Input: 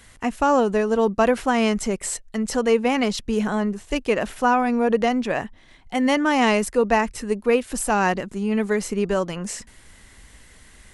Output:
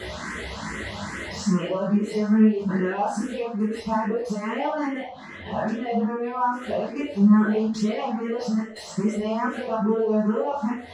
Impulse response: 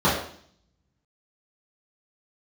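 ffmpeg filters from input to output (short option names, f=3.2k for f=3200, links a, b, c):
-filter_complex "[0:a]areverse,lowpass=8.5k,lowshelf=f=160:g=-11.5,acompressor=mode=upward:threshold=-23dB:ratio=2.5,alimiter=limit=-15.5dB:level=0:latency=1,acompressor=threshold=-30dB:ratio=6,asoftclip=type=tanh:threshold=-23.5dB,flanger=delay=16.5:depth=7.1:speed=0.24[a];[1:a]atrim=start_sample=2205,asetrate=48510,aresample=44100[b];[a][b]afir=irnorm=-1:irlink=0,asplit=2[c][d];[d]afreqshift=2.4[e];[c][e]amix=inputs=2:normalize=1,volume=-6.5dB"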